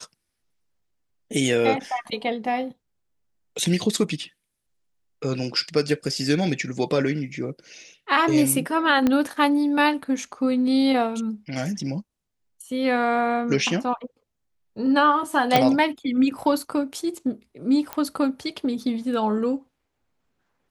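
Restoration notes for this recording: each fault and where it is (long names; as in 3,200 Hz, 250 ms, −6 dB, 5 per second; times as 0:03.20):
0:09.07: click −9 dBFS
0:15.56: click
0:17.93: click −13 dBFS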